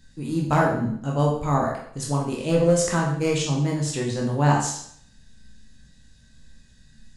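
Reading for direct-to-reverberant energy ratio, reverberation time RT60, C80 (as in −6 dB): −2.5 dB, 0.60 s, 7.5 dB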